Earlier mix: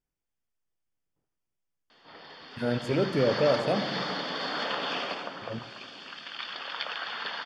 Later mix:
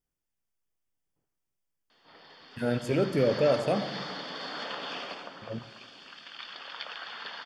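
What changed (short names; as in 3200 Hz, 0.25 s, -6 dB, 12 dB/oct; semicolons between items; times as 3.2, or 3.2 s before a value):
background -6.0 dB; master: add high shelf 9700 Hz +11.5 dB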